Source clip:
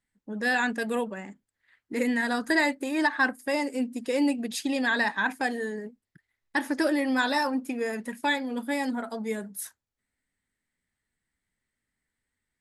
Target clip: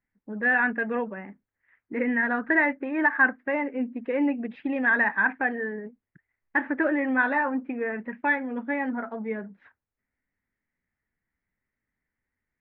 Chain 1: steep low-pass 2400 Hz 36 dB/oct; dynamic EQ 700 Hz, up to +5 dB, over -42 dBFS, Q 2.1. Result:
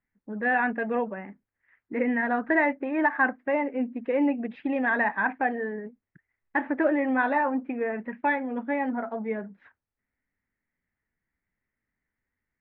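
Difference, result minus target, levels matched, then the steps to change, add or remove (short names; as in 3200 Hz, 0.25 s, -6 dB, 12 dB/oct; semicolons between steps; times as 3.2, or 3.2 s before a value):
500 Hz band +3.5 dB
change: dynamic EQ 1600 Hz, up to +5 dB, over -42 dBFS, Q 2.1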